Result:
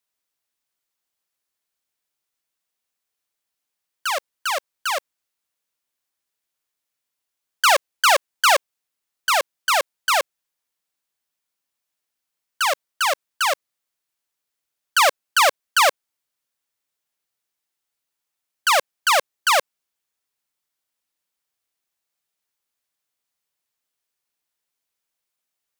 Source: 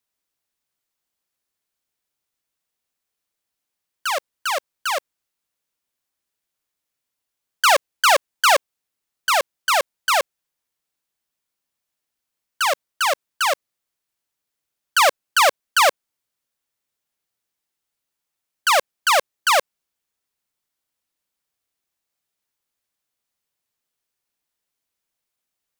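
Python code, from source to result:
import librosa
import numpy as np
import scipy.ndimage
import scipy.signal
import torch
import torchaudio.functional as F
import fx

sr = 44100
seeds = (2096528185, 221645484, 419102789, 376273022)

y = fx.low_shelf(x, sr, hz=390.0, db=-5.5)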